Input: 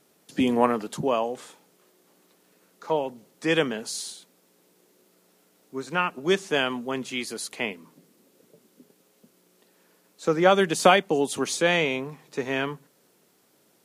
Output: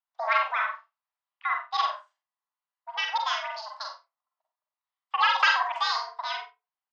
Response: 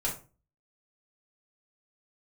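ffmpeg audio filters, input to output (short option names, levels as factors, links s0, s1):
-filter_complex "[0:a]agate=range=0.251:threshold=0.00316:ratio=16:detection=peak,afwtdn=0.0282,aecho=1:1:91|182|273:0.447|0.116|0.0302,asplit=2[s0][s1];[1:a]atrim=start_sample=2205,adelay=78[s2];[s1][s2]afir=irnorm=-1:irlink=0,volume=0.398[s3];[s0][s3]amix=inputs=2:normalize=0,highpass=f=310:t=q:w=0.5412,highpass=f=310:t=q:w=1.307,lowpass=f=2400:t=q:w=0.5176,lowpass=f=2400:t=q:w=0.7071,lowpass=f=2400:t=q:w=1.932,afreqshift=75,asetrate=88200,aresample=44100,volume=0.631"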